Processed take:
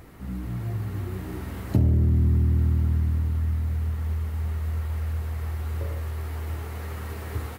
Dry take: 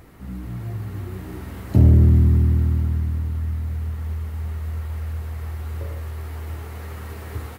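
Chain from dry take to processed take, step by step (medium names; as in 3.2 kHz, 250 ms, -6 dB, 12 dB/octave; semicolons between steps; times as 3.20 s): compression 6:1, threshold -17 dBFS, peak gain reduction 8.5 dB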